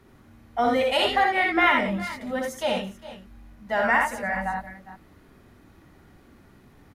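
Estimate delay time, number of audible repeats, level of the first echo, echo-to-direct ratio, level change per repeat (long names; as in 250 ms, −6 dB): 61 ms, 3, −4.5 dB, −1.5 dB, repeats not evenly spaced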